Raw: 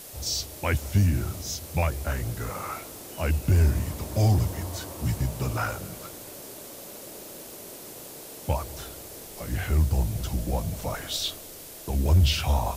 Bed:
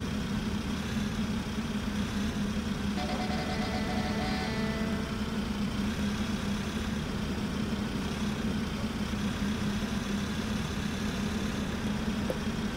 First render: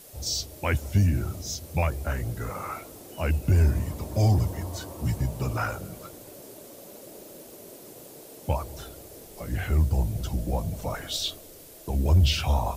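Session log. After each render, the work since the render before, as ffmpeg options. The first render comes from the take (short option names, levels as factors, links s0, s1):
-af "afftdn=nr=7:nf=-43"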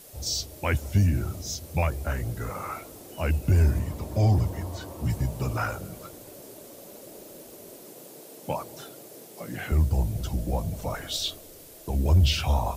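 -filter_complex "[0:a]asettb=1/sr,asplit=3[s0][s1][s2];[s0]atrim=end=3.794[s3];[s1]atrim=start=3.79:end=5.1,asetpts=PTS-STARTPTS,afade=t=in:d=0.004:c=qsin,afade=t=out:st=1.306:d=0.004:c=qsin,acrossover=split=4200[s4][s5];[s5]acompressor=threshold=0.00447:ratio=4:attack=1:release=60[s6];[s4][s6]amix=inputs=2:normalize=0[s7];[s2]atrim=start=5.096[s8];[s3][s7]acrossfade=d=0.004:c1=hsin:c2=qsin[s9];[s9][s8]acrossfade=d=0.004:c1=qsin:c2=hsin,asettb=1/sr,asplit=3[s10][s11][s12];[s10]atrim=end=7.834[s13];[s11]atrim=start=7.83:end=9.72,asetpts=PTS-STARTPTS,afade=t=in:d=0.004:c=qsin,afade=t=out:st=1.886:d=0.004:c=qsin,highpass=f=140:w=0.5412,highpass=f=140:w=1.3066[s14];[s12]atrim=start=9.716[s15];[s13][s14]acrossfade=d=0.004:c1=hsin:c2=qsin[s16];[s16][s15]acrossfade=d=0.004:c1=qsin:c2=hsin"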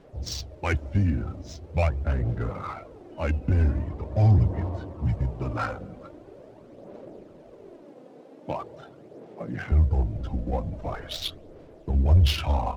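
-af "aphaser=in_gain=1:out_gain=1:delay=4:decay=0.41:speed=0.43:type=sinusoidal,adynamicsmooth=sensitivity=3:basefreq=1500"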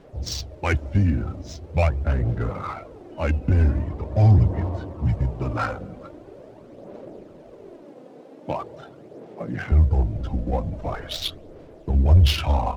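-af "volume=1.5"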